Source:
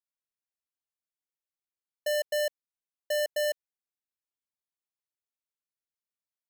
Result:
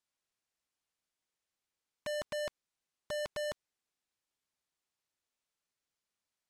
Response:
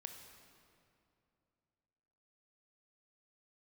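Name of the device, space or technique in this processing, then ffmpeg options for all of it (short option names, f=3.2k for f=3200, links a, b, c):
overflowing digital effects unit: -af "aeval=exprs='(mod(106*val(0)+1,2)-1)/106':c=same,lowpass=8.9k,volume=7.5dB"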